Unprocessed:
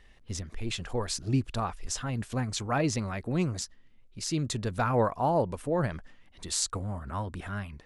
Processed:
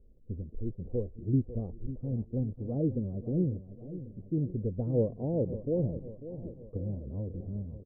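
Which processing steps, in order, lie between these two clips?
elliptic low-pass filter 510 Hz, stop band 80 dB
on a send: repeating echo 545 ms, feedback 54%, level −13 dB

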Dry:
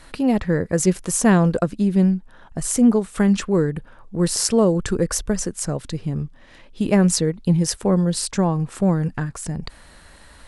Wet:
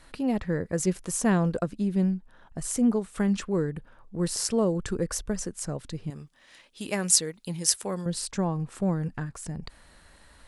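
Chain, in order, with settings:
0:06.10–0:08.06: spectral tilt +3.5 dB per octave
level −8 dB

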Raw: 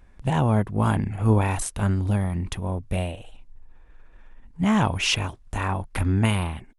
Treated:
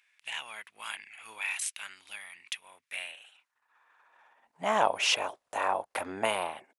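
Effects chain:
high-pass filter sweep 2,400 Hz → 590 Hz, 0:02.63–0:04.76
level −3.5 dB

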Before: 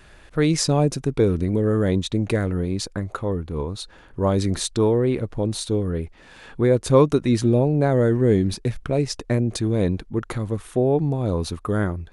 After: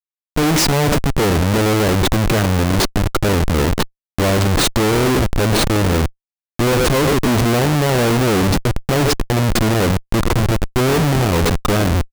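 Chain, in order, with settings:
far-end echo of a speakerphone 100 ms, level −9 dB
comparator with hysteresis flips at −27.5 dBFS
level +7 dB

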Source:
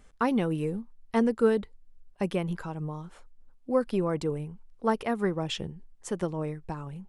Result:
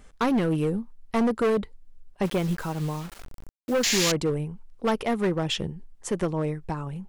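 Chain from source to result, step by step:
0:03.83–0:04.12: sound drawn into the spectrogram noise 1,600–7,400 Hz −27 dBFS
gain into a clipping stage and back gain 25 dB
0:02.25–0:04.01: bit-depth reduction 8 bits, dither none
level +5.5 dB

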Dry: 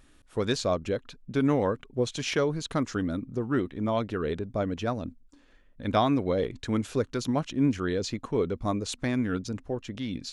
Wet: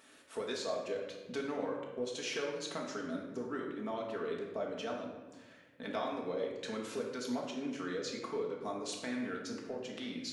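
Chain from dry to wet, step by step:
high-pass filter 370 Hz 12 dB per octave
downward compressor 2.5 to 1, threshold −47 dBFS, peak gain reduction 18 dB
convolution reverb RT60 1.2 s, pre-delay 4 ms, DRR −2.5 dB
level +1 dB

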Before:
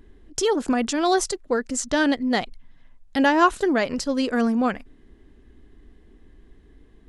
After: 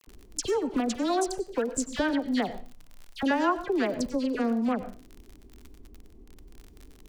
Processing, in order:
adaptive Wiener filter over 25 samples
downward compressor 2.5 to 1, threshold −26 dBFS, peak gain reduction 9.5 dB
all-pass dispersion lows, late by 74 ms, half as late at 1,800 Hz
surface crackle 39 per second −37 dBFS
on a send: convolution reverb RT60 0.35 s, pre-delay 88 ms, DRR 13.5 dB

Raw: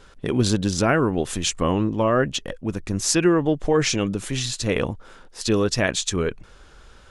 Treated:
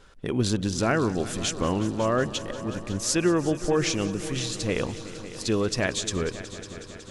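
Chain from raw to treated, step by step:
echo machine with several playback heads 184 ms, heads all three, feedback 66%, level −18.5 dB
level −4.5 dB

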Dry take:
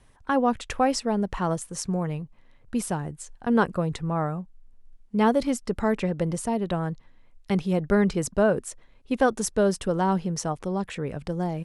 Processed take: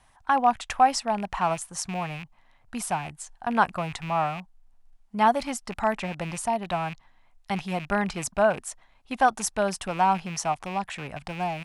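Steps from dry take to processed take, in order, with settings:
loose part that buzzes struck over −33 dBFS, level −30 dBFS
low shelf with overshoot 590 Hz −7 dB, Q 3
level +1 dB

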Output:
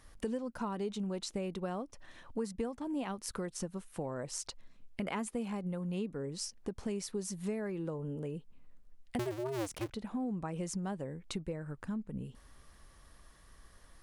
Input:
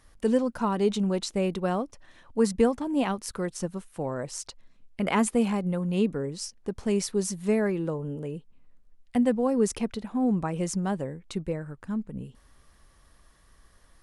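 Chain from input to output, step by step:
0:09.19–0:09.91: sub-harmonics by changed cycles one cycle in 2, inverted
downward compressor 4 to 1, threshold −36 dBFS, peak gain reduction 16.5 dB

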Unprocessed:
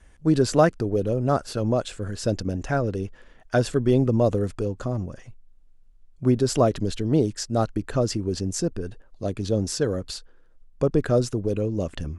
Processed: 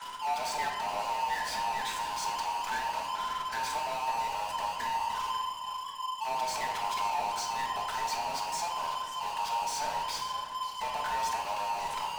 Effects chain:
frequency inversion band by band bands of 1,000 Hz
high-pass filter 820 Hz 24 dB per octave
leveller curve on the samples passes 3
downward compressor 3 to 1, threshold −33 dBFS, peak gain reduction 13 dB
mid-hump overdrive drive 35 dB, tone 5,500 Hz, clips at −24 dBFS
convolution reverb RT60 1.2 s, pre-delay 5 ms, DRR 0 dB
feedback echo with a swinging delay time 541 ms, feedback 44%, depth 143 cents, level −13 dB
level −8 dB

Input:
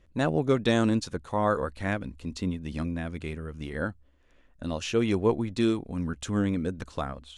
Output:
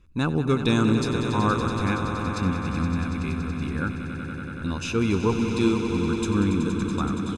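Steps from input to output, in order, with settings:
comb filter 0.8 ms, depth 74%
on a send: echo that builds up and dies away 94 ms, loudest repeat 5, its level −10.5 dB

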